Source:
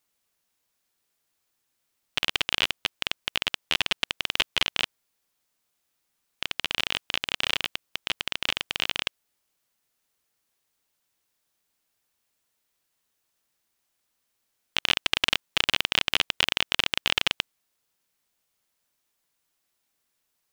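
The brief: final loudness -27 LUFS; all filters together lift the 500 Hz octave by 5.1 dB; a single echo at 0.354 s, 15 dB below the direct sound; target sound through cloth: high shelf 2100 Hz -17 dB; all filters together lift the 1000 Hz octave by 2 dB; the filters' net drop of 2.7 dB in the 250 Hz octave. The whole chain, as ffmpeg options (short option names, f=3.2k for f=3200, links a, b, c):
-af "equalizer=f=250:t=o:g=-7,equalizer=f=500:t=o:g=8,equalizer=f=1k:t=o:g=5,highshelf=f=2.1k:g=-17,aecho=1:1:354:0.178,volume=7dB"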